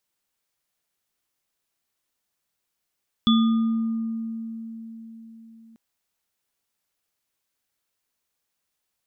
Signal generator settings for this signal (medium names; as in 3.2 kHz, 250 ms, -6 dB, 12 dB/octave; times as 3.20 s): sine partials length 2.49 s, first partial 226 Hz, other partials 1.22/3.44 kHz, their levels -10.5/-5 dB, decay 4.49 s, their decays 1.47/0.60 s, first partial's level -14.5 dB